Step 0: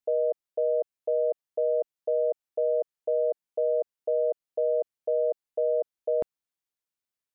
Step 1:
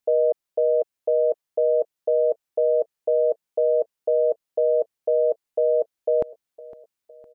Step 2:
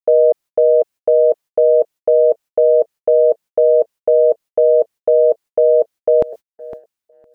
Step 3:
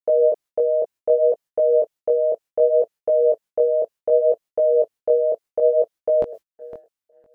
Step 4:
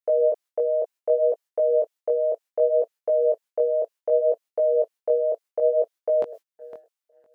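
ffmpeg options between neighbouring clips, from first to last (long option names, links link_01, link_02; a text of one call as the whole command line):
ffmpeg -i in.wav -af "aecho=1:1:509|1018|1527|2036:0.112|0.0595|0.0315|0.0167,volume=6dB" out.wav
ffmpeg -i in.wav -af "agate=range=-44dB:threshold=-41dB:ratio=16:detection=peak,areverse,acompressor=mode=upward:threshold=-34dB:ratio=2.5,areverse,volume=8.5dB" out.wav
ffmpeg -i in.wav -af "flanger=delay=17.5:depth=6.3:speed=0.66,volume=-2.5dB" out.wav
ffmpeg -i in.wav -af "highpass=frequency=630:poles=1" out.wav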